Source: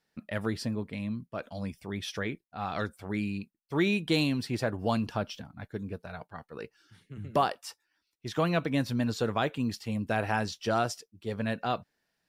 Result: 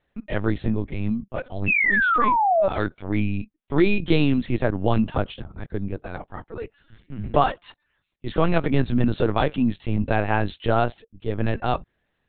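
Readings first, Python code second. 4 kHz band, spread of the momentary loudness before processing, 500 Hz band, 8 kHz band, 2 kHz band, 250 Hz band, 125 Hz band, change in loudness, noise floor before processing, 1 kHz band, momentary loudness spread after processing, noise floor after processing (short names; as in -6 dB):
+1.0 dB, 15 LU, +8.0 dB, under -35 dB, +11.0 dB, +7.5 dB, +8.5 dB, +8.5 dB, -80 dBFS, +9.5 dB, 16 LU, -74 dBFS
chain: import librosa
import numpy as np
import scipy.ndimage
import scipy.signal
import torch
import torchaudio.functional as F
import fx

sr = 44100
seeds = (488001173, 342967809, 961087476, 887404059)

y = fx.spec_paint(x, sr, seeds[0], shape='fall', start_s=1.67, length_s=1.01, low_hz=560.0, high_hz=2700.0, level_db=-26.0)
y = fx.low_shelf(y, sr, hz=500.0, db=5.0)
y = fx.lpc_vocoder(y, sr, seeds[1], excitation='pitch_kept', order=10)
y = F.gain(torch.from_numpy(y), 5.5).numpy()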